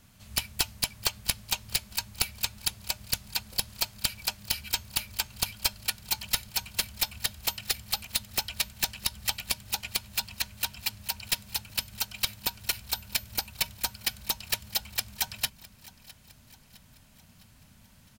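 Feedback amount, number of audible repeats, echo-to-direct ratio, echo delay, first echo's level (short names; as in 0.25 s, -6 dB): 52%, 3, -19.5 dB, 0.659 s, -21.0 dB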